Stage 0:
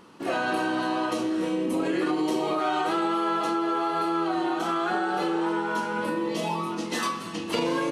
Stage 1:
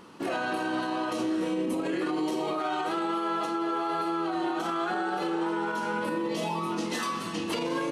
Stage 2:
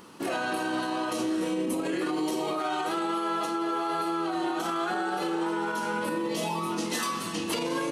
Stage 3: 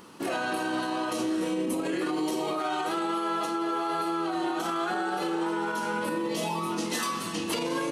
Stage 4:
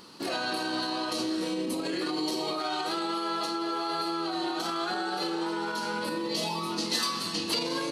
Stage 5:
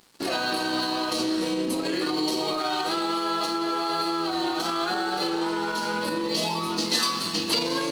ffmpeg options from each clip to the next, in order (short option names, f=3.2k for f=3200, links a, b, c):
-af "alimiter=limit=-23dB:level=0:latency=1:release=73,volume=1.5dB"
-af "highshelf=f=6.9k:g=11"
-af anull
-af "equalizer=f=4.4k:w=2.7:g=14.5,volume=-2.5dB"
-af "aeval=exprs='sgn(val(0))*max(abs(val(0))-0.00447,0)':c=same,volume=5.5dB"